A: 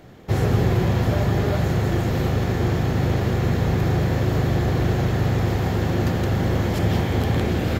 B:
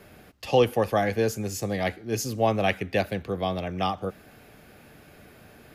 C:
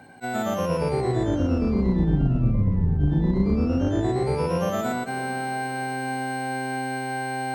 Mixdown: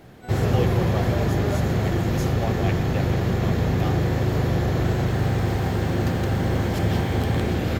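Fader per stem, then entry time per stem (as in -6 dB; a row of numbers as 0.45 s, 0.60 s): -1.5 dB, -8.5 dB, -12.5 dB; 0.00 s, 0.00 s, 0.00 s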